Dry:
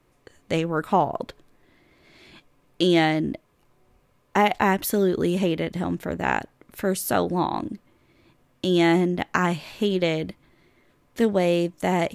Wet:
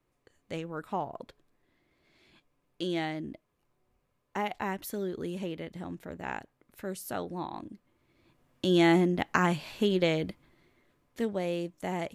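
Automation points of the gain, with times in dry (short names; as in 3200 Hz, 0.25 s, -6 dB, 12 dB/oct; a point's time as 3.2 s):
7.69 s -13 dB
8.71 s -3.5 dB
10.28 s -3.5 dB
11.35 s -11 dB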